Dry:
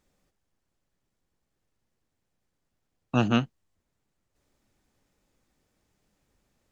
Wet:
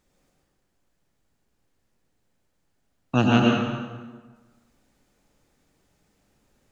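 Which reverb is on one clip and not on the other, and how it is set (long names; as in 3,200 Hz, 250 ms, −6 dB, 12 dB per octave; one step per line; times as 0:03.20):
dense smooth reverb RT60 1.4 s, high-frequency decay 0.75×, pre-delay 85 ms, DRR −2 dB
level +2.5 dB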